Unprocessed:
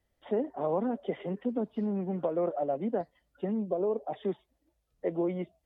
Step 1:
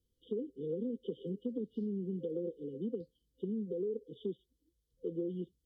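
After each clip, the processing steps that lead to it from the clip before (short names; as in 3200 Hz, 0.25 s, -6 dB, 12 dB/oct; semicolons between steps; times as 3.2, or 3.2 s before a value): FFT band-reject 520–2900 Hz; compressor 5:1, threshold -30 dBFS, peak gain reduction 5 dB; gain -3 dB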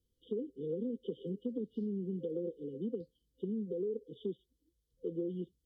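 nothing audible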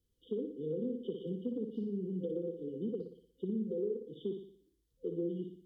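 flutter echo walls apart 10.1 m, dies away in 0.55 s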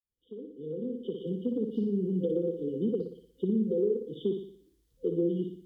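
opening faded in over 1.81 s; gain +8 dB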